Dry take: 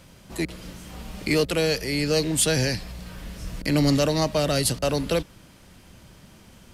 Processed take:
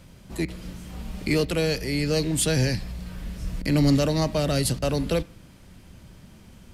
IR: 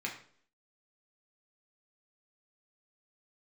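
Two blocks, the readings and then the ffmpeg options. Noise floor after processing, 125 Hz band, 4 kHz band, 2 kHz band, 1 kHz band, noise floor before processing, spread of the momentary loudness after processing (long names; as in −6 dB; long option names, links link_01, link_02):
−50 dBFS, +2.0 dB, −3.0 dB, −2.5 dB, −3.0 dB, −51 dBFS, 16 LU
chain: -filter_complex "[0:a]lowshelf=frequency=240:gain=9,asplit=2[link_01][link_02];[1:a]atrim=start_sample=2205[link_03];[link_02][link_03]afir=irnorm=-1:irlink=0,volume=-17dB[link_04];[link_01][link_04]amix=inputs=2:normalize=0,volume=-4dB"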